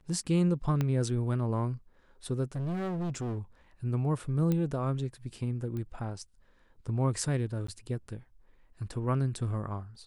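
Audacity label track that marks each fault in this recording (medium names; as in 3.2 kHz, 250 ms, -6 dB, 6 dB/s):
0.810000	0.810000	pop -17 dBFS
2.550000	3.380000	clipped -30.5 dBFS
4.520000	4.520000	pop -18 dBFS
5.770000	5.770000	pop -27 dBFS
7.670000	7.680000	dropout 14 ms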